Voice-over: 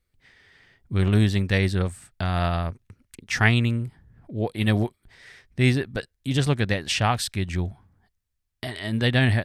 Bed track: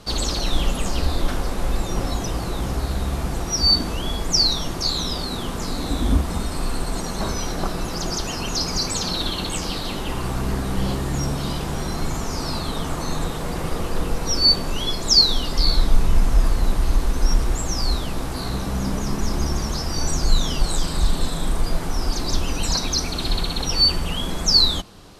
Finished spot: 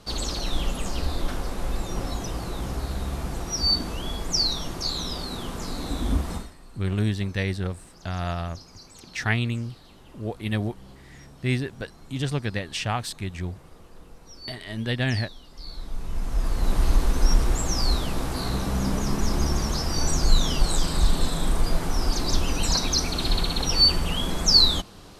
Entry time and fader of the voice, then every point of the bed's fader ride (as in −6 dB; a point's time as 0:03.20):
5.85 s, −5.0 dB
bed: 0:06.35 −5.5 dB
0:06.56 −24 dB
0:15.49 −24 dB
0:16.80 −1 dB